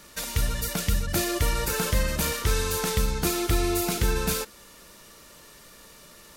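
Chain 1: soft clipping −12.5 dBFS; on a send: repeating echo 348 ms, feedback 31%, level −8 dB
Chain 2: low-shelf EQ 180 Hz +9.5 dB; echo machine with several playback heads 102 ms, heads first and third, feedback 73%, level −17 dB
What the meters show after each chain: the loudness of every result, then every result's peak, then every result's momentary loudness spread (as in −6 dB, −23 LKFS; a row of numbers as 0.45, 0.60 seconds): −26.0, −22.0 LKFS; −13.0, −5.0 dBFS; 11, 15 LU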